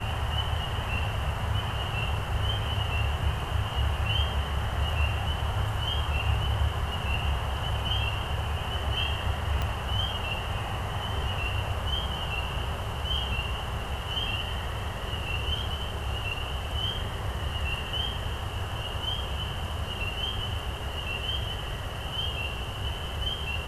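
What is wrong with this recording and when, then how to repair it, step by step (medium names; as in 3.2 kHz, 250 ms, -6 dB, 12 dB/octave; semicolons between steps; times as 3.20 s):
9.62 s: pop -16 dBFS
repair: de-click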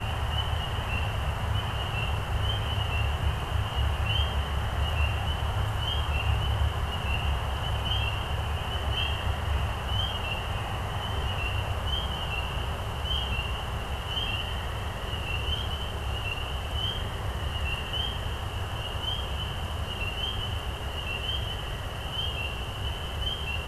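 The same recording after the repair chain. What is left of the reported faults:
9.62 s: pop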